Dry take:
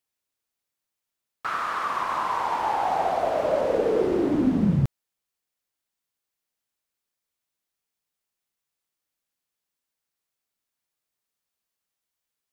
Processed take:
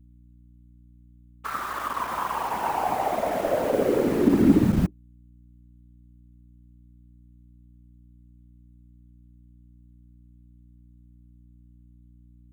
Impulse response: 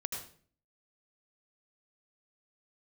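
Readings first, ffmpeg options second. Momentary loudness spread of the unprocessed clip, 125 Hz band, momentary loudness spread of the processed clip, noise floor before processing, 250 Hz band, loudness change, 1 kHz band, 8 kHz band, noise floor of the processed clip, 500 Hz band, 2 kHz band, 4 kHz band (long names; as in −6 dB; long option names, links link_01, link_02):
6 LU, −0.5 dB, 12 LU, −85 dBFS, +3.5 dB, +0.5 dB, −2.0 dB, can't be measured, −53 dBFS, −0.5 dB, −1.0 dB, −0.5 dB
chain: -filter_complex "[0:a]asuperstop=centerf=5000:order=12:qfactor=2.3,asplit=2[link_01][link_02];[link_02]acrusher=bits=3:mix=0:aa=0.000001,volume=-4dB[link_03];[link_01][link_03]amix=inputs=2:normalize=0,equalizer=frequency=270:width=7.6:gain=12.5,afftfilt=real='hypot(re,im)*cos(2*PI*random(0))':imag='hypot(re,im)*sin(2*PI*random(1))':win_size=512:overlap=0.75,acrossover=split=700|2800[link_04][link_05][link_06];[link_06]aeval=exprs='(mod(106*val(0)+1,2)-1)/106':channel_layout=same[link_07];[link_04][link_05][link_07]amix=inputs=3:normalize=0,aeval=exprs='val(0)+0.00282*(sin(2*PI*60*n/s)+sin(2*PI*2*60*n/s)/2+sin(2*PI*3*60*n/s)/3+sin(2*PI*4*60*n/s)/4+sin(2*PI*5*60*n/s)/5)':channel_layout=same"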